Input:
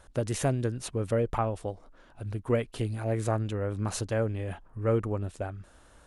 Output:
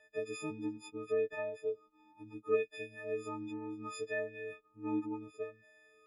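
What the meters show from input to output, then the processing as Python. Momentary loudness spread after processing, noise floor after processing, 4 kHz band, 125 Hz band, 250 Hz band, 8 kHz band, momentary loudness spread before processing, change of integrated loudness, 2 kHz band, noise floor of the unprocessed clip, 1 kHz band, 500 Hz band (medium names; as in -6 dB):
12 LU, -69 dBFS, -10.5 dB, -25.0 dB, -7.0 dB, -15.5 dB, 10 LU, -8.0 dB, -2.5 dB, -57 dBFS, -11.5 dB, -6.0 dB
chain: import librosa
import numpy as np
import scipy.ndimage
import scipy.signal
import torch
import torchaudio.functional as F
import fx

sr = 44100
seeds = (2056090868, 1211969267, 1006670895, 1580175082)

y = fx.freq_snap(x, sr, grid_st=6)
y = fx.vowel_sweep(y, sr, vowels='e-u', hz=0.7)
y = F.gain(torch.from_numpy(y), 1.0).numpy()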